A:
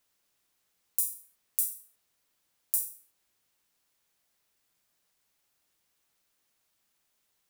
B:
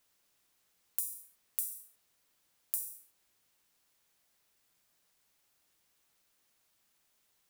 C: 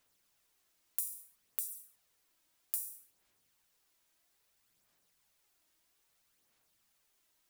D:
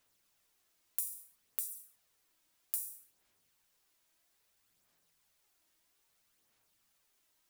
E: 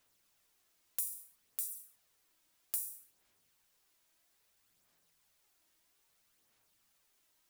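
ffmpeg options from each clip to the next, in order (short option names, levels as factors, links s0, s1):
-af "acompressor=threshold=0.0282:ratio=12,volume=1.19"
-af "aphaser=in_gain=1:out_gain=1:delay=3.2:decay=0.39:speed=0.61:type=sinusoidal,volume=0.794"
-af "flanger=delay=9.1:depth=3.6:regen=78:speed=0.47:shape=sinusoidal,volume=1.68"
-af "volume=8.91,asoftclip=hard,volume=0.112,volume=1.12"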